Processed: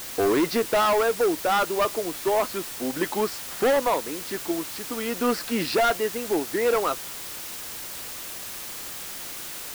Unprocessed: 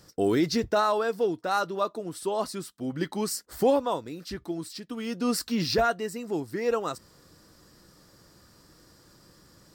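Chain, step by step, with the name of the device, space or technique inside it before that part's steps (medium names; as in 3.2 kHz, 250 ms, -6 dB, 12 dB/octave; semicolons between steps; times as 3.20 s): aircraft radio (band-pass 350–2600 Hz; hard clipper -26.5 dBFS, distortion -8 dB; white noise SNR 10 dB); trim +8.5 dB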